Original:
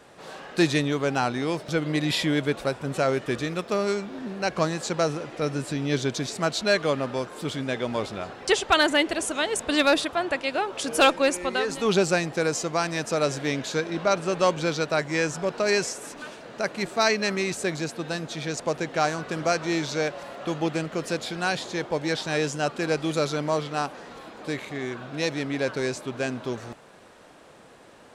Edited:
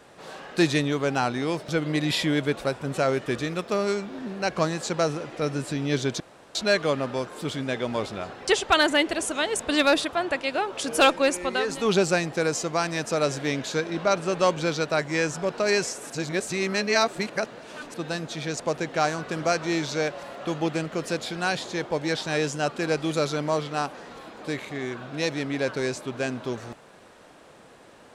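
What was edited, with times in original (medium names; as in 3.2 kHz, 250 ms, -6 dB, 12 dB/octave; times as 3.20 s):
6.20–6.55 s: room tone
16.10–17.94 s: reverse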